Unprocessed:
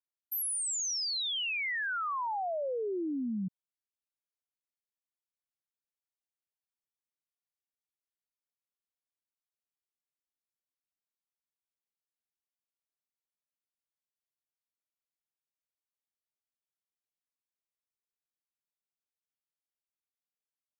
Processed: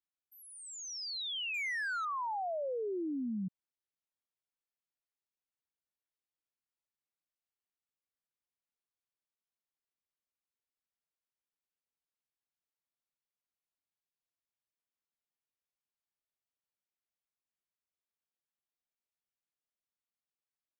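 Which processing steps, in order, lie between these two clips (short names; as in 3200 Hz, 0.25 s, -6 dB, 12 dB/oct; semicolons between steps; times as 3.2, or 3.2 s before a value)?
Bessel low-pass 3800 Hz, order 2; 1.54–2.05 sample leveller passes 1; gain -2.5 dB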